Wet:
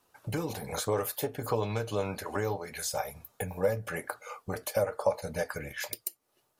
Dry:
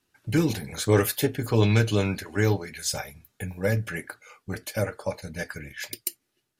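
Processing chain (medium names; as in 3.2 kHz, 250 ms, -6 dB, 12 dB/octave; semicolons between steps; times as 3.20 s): treble shelf 9.1 kHz +9 dB; compression 4:1, threshold -34 dBFS, peak gain reduction 16.5 dB; high-order bell 760 Hz +11.5 dB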